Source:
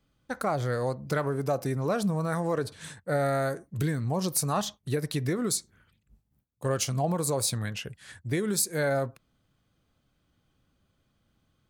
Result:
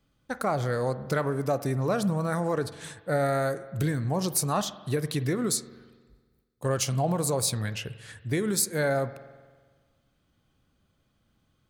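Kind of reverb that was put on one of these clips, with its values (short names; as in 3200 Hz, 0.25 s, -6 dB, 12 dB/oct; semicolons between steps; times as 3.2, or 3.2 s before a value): spring tank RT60 1.5 s, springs 46 ms, chirp 60 ms, DRR 14 dB; gain +1 dB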